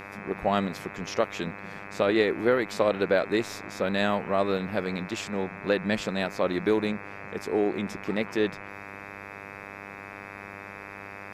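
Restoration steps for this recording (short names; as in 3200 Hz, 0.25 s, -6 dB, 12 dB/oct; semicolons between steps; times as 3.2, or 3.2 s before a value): de-hum 99.8 Hz, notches 26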